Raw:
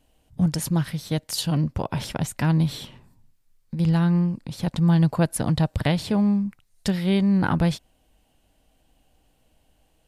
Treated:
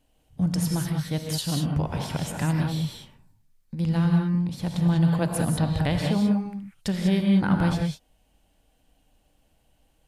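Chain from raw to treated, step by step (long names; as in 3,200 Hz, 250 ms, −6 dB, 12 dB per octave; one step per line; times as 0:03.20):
reverb whose tail is shaped and stops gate 220 ms rising, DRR 1.5 dB
level −4 dB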